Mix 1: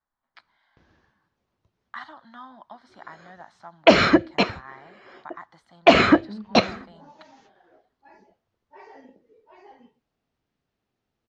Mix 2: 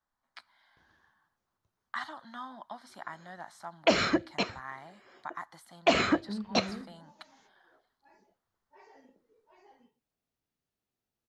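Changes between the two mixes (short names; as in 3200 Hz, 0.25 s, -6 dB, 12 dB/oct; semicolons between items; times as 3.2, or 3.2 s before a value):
background -11.0 dB; master: remove air absorption 130 m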